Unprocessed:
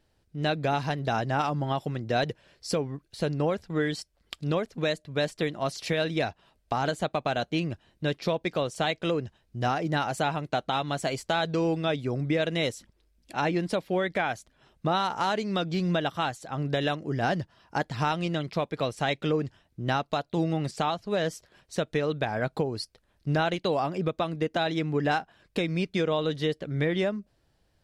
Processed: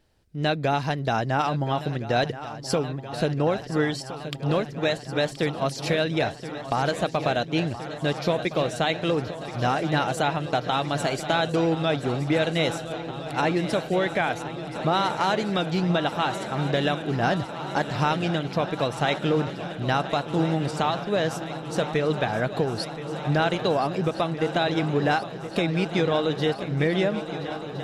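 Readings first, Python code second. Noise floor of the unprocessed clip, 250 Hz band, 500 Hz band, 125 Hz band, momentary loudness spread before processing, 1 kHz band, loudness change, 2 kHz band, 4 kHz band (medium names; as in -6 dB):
-70 dBFS, +3.5 dB, +3.5 dB, +3.5 dB, 6 LU, +3.5 dB, +3.5 dB, +3.5 dB, +3.5 dB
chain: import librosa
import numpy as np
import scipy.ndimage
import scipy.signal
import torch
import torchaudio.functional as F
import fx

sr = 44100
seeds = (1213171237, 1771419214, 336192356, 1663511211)

y = fx.echo_swing(x, sr, ms=1366, ratio=3, feedback_pct=77, wet_db=-13.5)
y = F.gain(torch.from_numpy(y), 3.0).numpy()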